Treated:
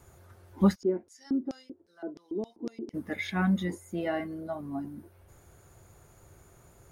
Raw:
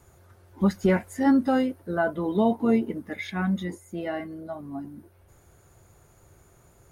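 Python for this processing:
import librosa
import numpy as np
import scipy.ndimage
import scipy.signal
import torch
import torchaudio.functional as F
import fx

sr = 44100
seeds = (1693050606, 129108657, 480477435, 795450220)

y = fx.filter_lfo_bandpass(x, sr, shape='square', hz=fx.line((0.74, 1.8), (2.93, 5.0)), low_hz=340.0, high_hz=5400.0, q=4.9, at=(0.74, 2.93), fade=0.02)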